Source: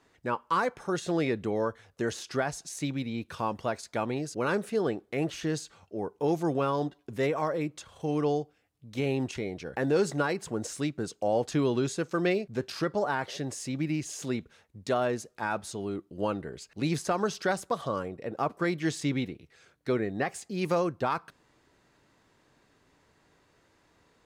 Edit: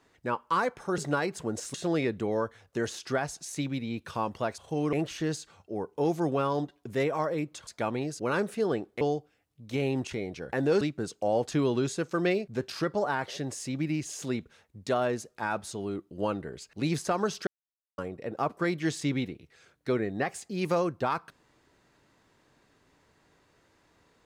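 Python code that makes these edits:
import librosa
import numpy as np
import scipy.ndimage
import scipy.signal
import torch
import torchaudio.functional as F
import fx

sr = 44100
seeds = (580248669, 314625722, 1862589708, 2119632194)

y = fx.edit(x, sr, fx.swap(start_s=3.82, length_s=1.34, other_s=7.9, other_length_s=0.35),
    fx.move(start_s=10.05, length_s=0.76, to_s=0.98),
    fx.silence(start_s=17.47, length_s=0.51), tone=tone)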